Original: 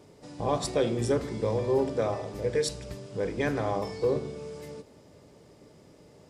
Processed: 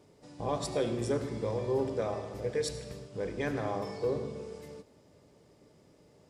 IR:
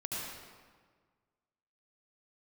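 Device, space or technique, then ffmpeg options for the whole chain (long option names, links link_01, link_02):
keyed gated reverb: -filter_complex "[0:a]asplit=3[link_01][link_02][link_03];[1:a]atrim=start_sample=2205[link_04];[link_02][link_04]afir=irnorm=-1:irlink=0[link_05];[link_03]apad=whole_len=277477[link_06];[link_05][link_06]sidechaingate=range=-33dB:threshold=-41dB:ratio=16:detection=peak,volume=-10.5dB[link_07];[link_01][link_07]amix=inputs=2:normalize=0,volume=-6.5dB"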